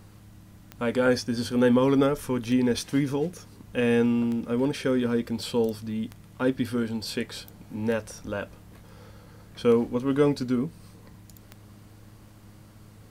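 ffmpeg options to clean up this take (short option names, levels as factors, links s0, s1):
-af "adeclick=t=4,bandreject=f=104.1:t=h:w=4,bandreject=f=208.2:t=h:w=4,bandreject=f=312.3:t=h:w=4"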